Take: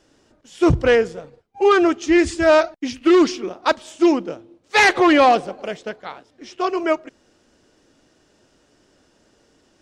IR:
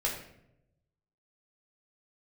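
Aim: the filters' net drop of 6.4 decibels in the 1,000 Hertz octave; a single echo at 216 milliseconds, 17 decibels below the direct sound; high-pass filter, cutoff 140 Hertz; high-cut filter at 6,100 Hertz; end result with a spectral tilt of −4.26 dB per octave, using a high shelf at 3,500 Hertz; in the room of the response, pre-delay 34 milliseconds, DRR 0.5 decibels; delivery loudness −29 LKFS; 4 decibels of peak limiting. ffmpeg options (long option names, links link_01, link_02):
-filter_complex "[0:a]highpass=140,lowpass=6100,equalizer=frequency=1000:width_type=o:gain=-8.5,highshelf=frequency=3500:gain=-8,alimiter=limit=-11.5dB:level=0:latency=1,aecho=1:1:216:0.141,asplit=2[link_01][link_02];[1:a]atrim=start_sample=2205,adelay=34[link_03];[link_02][link_03]afir=irnorm=-1:irlink=0,volume=-7dB[link_04];[link_01][link_04]amix=inputs=2:normalize=0,volume=-9.5dB"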